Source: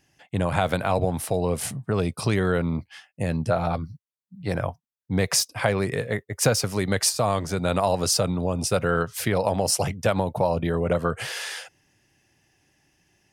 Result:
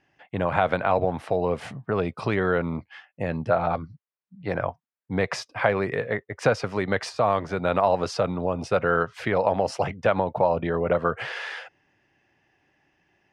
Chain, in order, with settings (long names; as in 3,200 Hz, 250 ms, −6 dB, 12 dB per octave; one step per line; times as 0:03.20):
low-pass filter 2,200 Hz 12 dB per octave
low-shelf EQ 250 Hz −11 dB
level +3.5 dB